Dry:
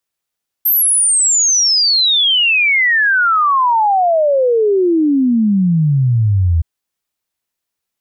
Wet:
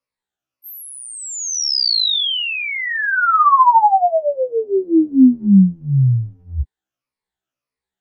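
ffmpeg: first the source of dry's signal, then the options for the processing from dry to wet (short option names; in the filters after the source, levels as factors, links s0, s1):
-f lavfi -i "aevalsrc='0.335*clip(min(t,5.97-t)/0.01,0,1)*sin(2*PI*13000*5.97/log(79/13000)*(exp(log(79/13000)*t/5.97)-1))':d=5.97:s=44100"
-af "afftfilt=real='re*pow(10,11/40*sin(2*PI*(0.92*log(max(b,1)*sr/1024/100)/log(2)-(-1.7)*(pts-256)/sr)))':imag='im*pow(10,11/40*sin(2*PI*(0.92*log(max(b,1)*sr/1024/100)/log(2)-(-1.7)*(pts-256)/sr)))':win_size=1024:overlap=0.75,aemphasis=mode=reproduction:type=75kf,afftfilt=real='re*1.73*eq(mod(b,3),0)':imag='im*1.73*eq(mod(b,3),0)':win_size=2048:overlap=0.75"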